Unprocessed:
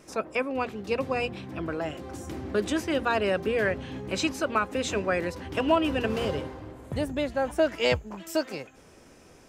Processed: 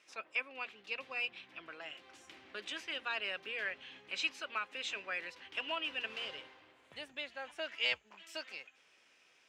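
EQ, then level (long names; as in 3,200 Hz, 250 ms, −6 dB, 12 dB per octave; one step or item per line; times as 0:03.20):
resonant band-pass 2,800 Hz, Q 1.8
−2.0 dB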